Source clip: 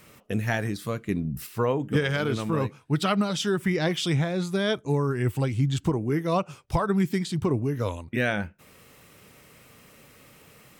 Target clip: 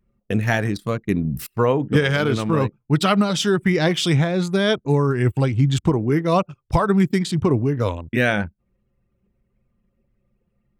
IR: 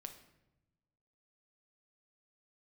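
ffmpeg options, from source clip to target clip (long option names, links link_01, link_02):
-af "anlmdn=0.631,volume=6.5dB"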